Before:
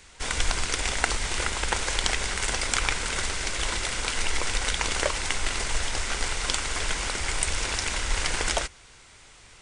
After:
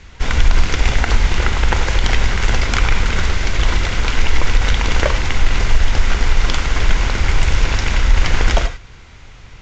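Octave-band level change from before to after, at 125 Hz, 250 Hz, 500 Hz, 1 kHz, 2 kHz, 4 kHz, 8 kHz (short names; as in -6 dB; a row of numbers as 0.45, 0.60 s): +17.5, +12.5, +8.5, +7.5, +7.0, +4.0, -2.5 dB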